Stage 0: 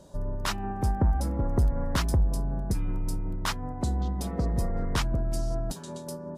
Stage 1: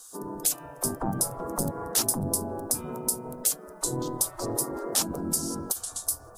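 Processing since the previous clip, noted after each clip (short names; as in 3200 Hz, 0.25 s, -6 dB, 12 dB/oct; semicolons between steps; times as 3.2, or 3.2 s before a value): spectral gate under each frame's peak -20 dB weak; EQ curve 120 Hz 0 dB, 1300 Hz -8 dB, 2000 Hz -19 dB, 9800 Hz +7 dB; in parallel at +2 dB: compressor, threshold -41 dBFS, peak gain reduction 9.5 dB; on the sum: gain +8.5 dB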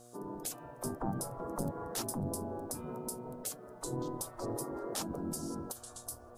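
added noise white -68 dBFS; high shelf 3300 Hz -10 dB; buzz 120 Hz, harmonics 6, -52 dBFS 0 dB/oct; gain -6 dB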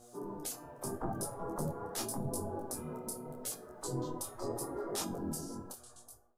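ending faded out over 1.05 s; resonator 410 Hz, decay 0.3 s, harmonics all, mix 70%; detuned doubles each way 28 cents; gain +12.5 dB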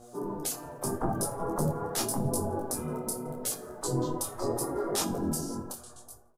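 feedback echo 85 ms, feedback 51%, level -23.5 dB; on a send at -19.5 dB: reverb RT60 1.7 s, pre-delay 3 ms; on the sum: mismatched tape noise reduction decoder only; gain +7.5 dB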